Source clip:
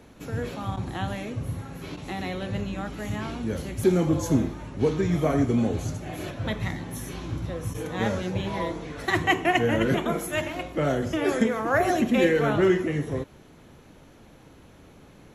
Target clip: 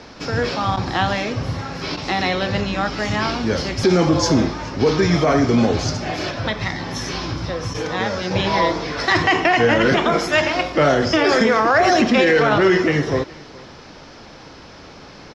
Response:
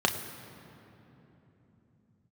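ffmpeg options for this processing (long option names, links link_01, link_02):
-filter_complex "[0:a]equalizer=frequency=1200:width=0.4:gain=9,asettb=1/sr,asplit=3[link_01][link_02][link_03];[link_01]atrim=end=6.114[link_04];[link_02]atrim=start=6.11:end=8.31,asetpts=PTS-STARTPTS,afade=type=in:duration=0.004:curve=qsin,afade=type=out:start_time=2.196:duration=0.004:curve=qsin,acompressor=threshold=-28dB:ratio=2.5[link_05];[link_03]atrim=start=8.306[link_06];[link_04][link_05]acrossfade=duration=0.004:curve1=hsin:curve2=qsin[link_07];[link_07][link_06]acrossfade=duration=0.004:curve1=qsin:curve2=hsin,alimiter=limit=-12.5dB:level=0:latency=1:release=34,acontrast=43,lowpass=frequency=5100:width_type=q:width=10,aecho=1:1:419:0.0708"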